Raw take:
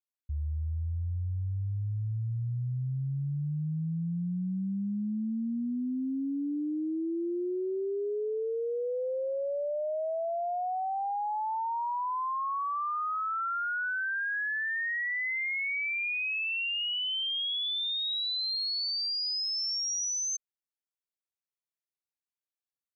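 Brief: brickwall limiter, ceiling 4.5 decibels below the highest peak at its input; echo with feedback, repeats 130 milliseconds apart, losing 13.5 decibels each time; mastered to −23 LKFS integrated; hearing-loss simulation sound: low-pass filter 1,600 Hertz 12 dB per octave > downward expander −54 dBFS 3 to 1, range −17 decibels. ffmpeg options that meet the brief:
ffmpeg -i in.wav -af "alimiter=level_in=9.5dB:limit=-24dB:level=0:latency=1,volume=-9.5dB,lowpass=1600,aecho=1:1:130|260:0.211|0.0444,agate=range=-17dB:threshold=-54dB:ratio=3,volume=15dB" out.wav

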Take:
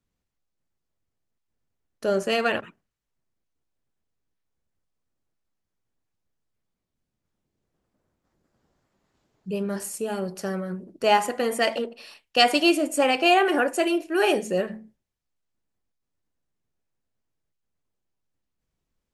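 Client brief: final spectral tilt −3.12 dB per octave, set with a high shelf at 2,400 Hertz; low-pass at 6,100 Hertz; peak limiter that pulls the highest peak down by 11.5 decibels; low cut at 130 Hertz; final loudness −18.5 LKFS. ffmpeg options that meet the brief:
ffmpeg -i in.wav -af "highpass=130,lowpass=6100,highshelf=frequency=2400:gain=8,volume=6.5dB,alimiter=limit=-5.5dB:level=0:latency=1" out.wav

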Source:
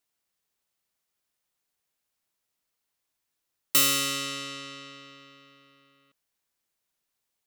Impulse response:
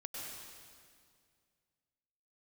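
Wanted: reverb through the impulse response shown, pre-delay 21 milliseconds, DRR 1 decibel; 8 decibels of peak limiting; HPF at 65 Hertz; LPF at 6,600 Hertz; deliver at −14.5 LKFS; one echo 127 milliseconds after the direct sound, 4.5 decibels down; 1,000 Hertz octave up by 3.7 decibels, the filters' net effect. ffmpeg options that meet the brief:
-filter_complex "[0:a]highpass=65,lowpass=6600,equalizer=frequency=1000:width_type=o:gain=5,alimiter=limit=-21.5dB:level=0:latency=1,aecho=1:1:127:0.596,asplit=2[link_01][link_02];[1:a]atrim=start_sample=2205,adelay=21[link_03];[link_02][link_03]afir=irnorm=-1:irlink=0,volume=0dB[link_04];[link_01][link_04]amix=inputs=2:normalize=0,volume=15dB"

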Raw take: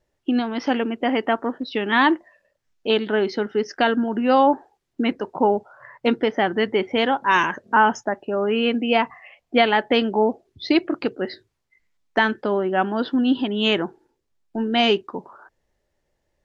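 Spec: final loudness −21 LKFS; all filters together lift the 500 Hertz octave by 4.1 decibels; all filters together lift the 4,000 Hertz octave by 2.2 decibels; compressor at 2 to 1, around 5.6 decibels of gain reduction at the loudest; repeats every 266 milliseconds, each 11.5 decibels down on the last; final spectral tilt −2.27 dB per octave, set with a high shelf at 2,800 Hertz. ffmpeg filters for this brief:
ffmpeg -i in.wav -af "equalizer=frequency=500:width_type=o:gain=5,highshelf=frequency=2800:gain=-4.5,equalizer=frequency=4000:width_type=o:gain=7,acompressor=threshold=-19dB:ratio=2,aecho=1:1:266|532|798:0.266|0.0718|0.0194,volume=2dB" out.wav

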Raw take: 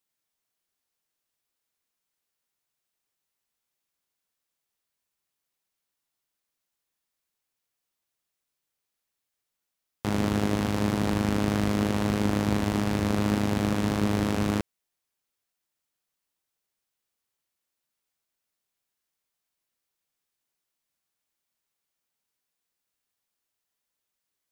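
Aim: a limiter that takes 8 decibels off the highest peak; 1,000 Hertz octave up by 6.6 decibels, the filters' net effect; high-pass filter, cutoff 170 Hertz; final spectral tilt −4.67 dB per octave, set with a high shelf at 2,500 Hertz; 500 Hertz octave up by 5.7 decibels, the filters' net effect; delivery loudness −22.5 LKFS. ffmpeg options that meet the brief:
ffmpeg -i in.wav -af "highpass=170,equalizer=frequency=500:width_type=o:gain=5.5,equalizer=frequency=1000:width_type=o:gain=5.5,highshelf=frequency=2500:gain=6.5,volume=7dB,alimiter=limit=-7.5dB:level=0:latency=1" out.wav

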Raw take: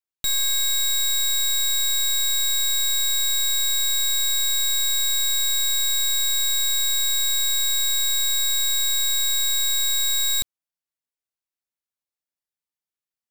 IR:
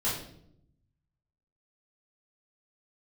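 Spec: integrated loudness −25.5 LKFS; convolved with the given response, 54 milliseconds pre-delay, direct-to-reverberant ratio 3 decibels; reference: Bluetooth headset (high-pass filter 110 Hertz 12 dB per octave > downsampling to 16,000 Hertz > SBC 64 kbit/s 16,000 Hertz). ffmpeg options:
-filter_complex "[0:a]asplit=2[link_01][link_02];[1:a]atrim=start_sample=2205,adelay=54[link_03];[link_02][link_03]afir=irnorm=-1:irlink=0,volume=-10.5dB[link_04];[link_01][link_04]amix=inputs=2:normalize=0,highpass=110,aresample=16000,aresample=44100,volume=-6.5dB" -ar 16000 -c:a sbc -b:a 64k

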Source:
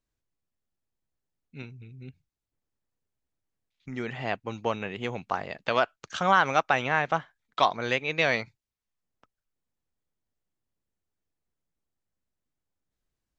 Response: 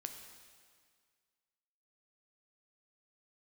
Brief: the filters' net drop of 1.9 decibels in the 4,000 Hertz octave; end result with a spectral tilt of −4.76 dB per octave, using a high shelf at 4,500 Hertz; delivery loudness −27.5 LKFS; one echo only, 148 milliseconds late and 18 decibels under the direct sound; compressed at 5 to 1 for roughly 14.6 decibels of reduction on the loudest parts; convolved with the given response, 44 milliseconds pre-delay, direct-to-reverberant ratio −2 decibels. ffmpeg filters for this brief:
-filter_complex "[0:a]equalizer=frequency=4000:width_type=o:gain=-6,highshelf=frequency=4500:gain=7.5,acompressor=threshold=-33dB:ratio=5,aecho=1:1:148:0.126,asplit=2[link_01][link_02];[1:a]atrim=start_sample=2205,adelay=44[link_03];[link_02][link_03]afir=irnorm=-1:irlink=0,volume=4.5dB[link_04];[link_01][link_04]amix=inputs=2:normalize=0,volume=7.5dB"

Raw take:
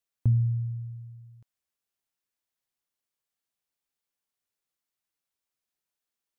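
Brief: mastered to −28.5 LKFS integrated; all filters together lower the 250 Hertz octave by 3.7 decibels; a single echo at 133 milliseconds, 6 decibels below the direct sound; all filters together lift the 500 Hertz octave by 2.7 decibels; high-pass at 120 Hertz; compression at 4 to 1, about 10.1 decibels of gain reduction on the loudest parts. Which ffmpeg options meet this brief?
ffmpeg -i in.wav -af "highpass=120,equalizer=frequency=250:width_type=o:gain=-5,equalizer=frequency=500:width_type=o:gain=5.5,acompressor=threshold=-35dB:ratio=4,aecho=1:1:133:0.501,volume=13.5dB" out.wav

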